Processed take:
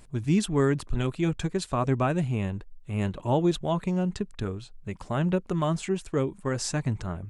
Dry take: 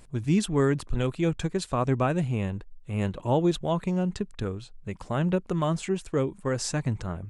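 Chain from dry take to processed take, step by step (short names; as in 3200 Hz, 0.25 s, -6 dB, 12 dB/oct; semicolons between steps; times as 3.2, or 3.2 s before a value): notch 500 Hz, Q 12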